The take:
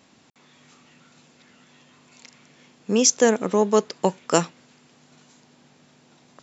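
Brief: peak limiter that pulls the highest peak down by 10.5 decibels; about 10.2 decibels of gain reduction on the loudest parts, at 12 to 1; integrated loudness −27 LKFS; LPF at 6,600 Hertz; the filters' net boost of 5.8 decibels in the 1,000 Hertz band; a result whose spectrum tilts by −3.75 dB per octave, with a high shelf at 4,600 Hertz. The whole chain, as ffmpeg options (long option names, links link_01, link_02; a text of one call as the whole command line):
ffmpeg -i in.wav -af "lowpass=6600,equalizer=frequency=1000:width_type=o:gain=7.5,highshelf=frequency=4600:gain=-7.5,acompressor=threshold=-20dB:ratio=12,volume=5dB,alimiter=limit=-13.5dB:level=0:latency=1" out.wav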